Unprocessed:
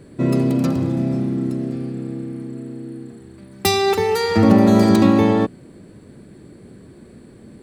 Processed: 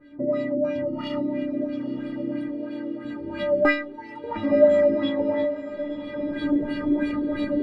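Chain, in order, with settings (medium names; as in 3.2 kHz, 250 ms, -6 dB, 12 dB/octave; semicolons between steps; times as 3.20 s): recorder AGC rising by 25 dB/s; 3.69–4.24 s: pre-emphasis filter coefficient 0.8; reverb removal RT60 0.59 s; 2.48–3.05 s: tone controls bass -13 dB, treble -3 dB; in parallel at -7.5 dB: sine folder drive 16 dB, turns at 18.5 dBFS; 0.86–1.26 s: on the sum: sample-rate reducer 1.6 kHz, jitter 0%; inharmonic resonator 290 Hz, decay 0.59 s, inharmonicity 0.008; LFO low-pass sine 3 Hz 410–3300 Hz; on a send: echo that smears into a reverb 965 ms, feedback 53%, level -13.5 dB; on the sum: trim -3.5 dB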